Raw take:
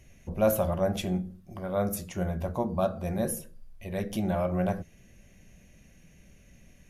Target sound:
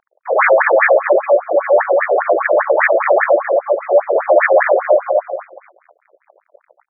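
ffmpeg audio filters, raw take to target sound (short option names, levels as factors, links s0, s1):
-filter_complex "[0:a]highpass=270,lowpass=5500,aemphasis=mode=reproduction:type=75kf,asplit=4[s0][s1][s2][s3];[s1]asetrate=22050,aresample=44100,atempo=2,volume=0.501[s4];[s2]asetrate=66075,aresample=44100,atempo=0.66742,volume=0.398[s5];[s3]asetrate=88200,aresample=44100,atempo=0.5,volume=0.447[s6];[s0][s4][s5][s6]amix=inputs=4:normalize=0,asplit=2[s7][s8];[s8]acompressor=threshold=0.0158:ratio=6,volume=0.794[s9];[s7][s9]amix=inputs=2:normalize=0,bandreject=f=920:w=28,asplit=2[s10][s11];[s11]adelay=243,lowpass=f=4000:p=1,volume=0.596,asplit=2[s12][s13];[s13]adelay=243,lowpass=f=4000:p=1,volume=0.42,asplit=2[s14][s15];[s15]adelay=243,lowpass=f=4000:p=1,volume=0.42,asplit=2[s16][s17];[s17]adelay=243,lowpass=f=4000:p=1,volume=0.42,asplit=2[s18][s19];[s19]adelay=243,lowpass=f=4000:p=1,volume=0.42[s20];[s12][s14][s16][s18][s20]amix=inputs=5:normalize=0[s21];[s10][s21]amix=inputs=2:normalize=0,aeval=exprs='sgn(val(0))*max(abs(val(0))-0.00299,0)':c=same,equalizer=f=600:w=1.7:g=13,bandreject=f=60:t=h:w=6,bandreject=f=120:t=h:w=6,bandreject=f=180:t=h:w=6,bandreject=f=240:t=h:w=6,bandreject=f=300:t=h:w=6,bandreject=f=360:t=h:w=6,aeval=exprs='0.794*sin(PI/2*5.01*val(0)/0.794)':c=same,alimiter=level_in=2:limit=0.891:release=50:level=0:latency=1,afftfilt=real='re*between(b*sr/1024,460*pow(1800/460,0.5+0.5*sin(2*PI*5*pts/sr))/1.41,460*pow(1800/460,0.5+0.5*sin(2*PI*5*pts/sr))*1.41)':imag='im*between(b*sr/1024,460*pow(1800/460,0.5+0.5*sin(2*PI*5*pts/sr))/1.41,460*pow(1800/460,0.5+0.5*sin(2*PI*5*pts/sr))*1.41)':win_size=1024:overlap=0.75,volume=0.75"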